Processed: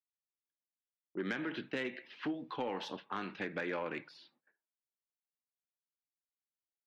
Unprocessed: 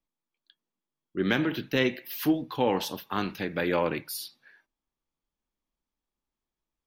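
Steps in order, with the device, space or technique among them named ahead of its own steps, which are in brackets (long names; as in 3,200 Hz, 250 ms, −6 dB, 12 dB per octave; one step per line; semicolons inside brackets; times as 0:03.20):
dynamic equaliser 1,700 Hz, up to +5 dB, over −41 dBFS, Q 1.2
noise gate −54 dBFS, range −19 dB
low-pass that shuts in the quiet parts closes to 790 Hz, open at −24 dBFS
AM radio (band-pass filter 190–3,600 Hz; downward compressor 6 to 1, threshold −29 dBFS, peak gain reduction 10.5 dB; soft clipping −22 dBFS, distortion −20 dB)
level −4 dB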